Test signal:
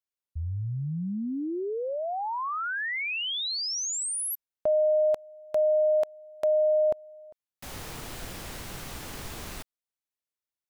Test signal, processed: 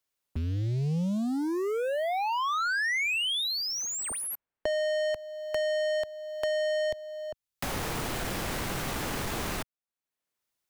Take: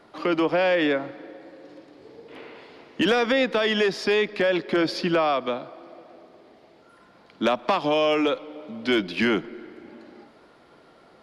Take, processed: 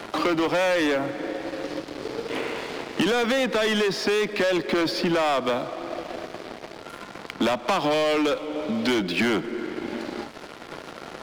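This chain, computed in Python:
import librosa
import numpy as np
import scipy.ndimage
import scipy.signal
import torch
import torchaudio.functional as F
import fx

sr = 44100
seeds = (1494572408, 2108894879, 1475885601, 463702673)

y = fx.leveller(x, sr, passes=3)
y = fx.band_squash(y, sr, depth_pct=70)
y = y * 10.0 ** (-6.0 / 20.0)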